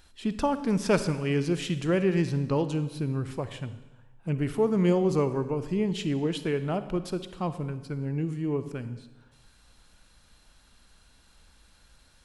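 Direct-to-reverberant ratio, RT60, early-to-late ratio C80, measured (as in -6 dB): 11.5 dB, 1.1 s, 14.0 dB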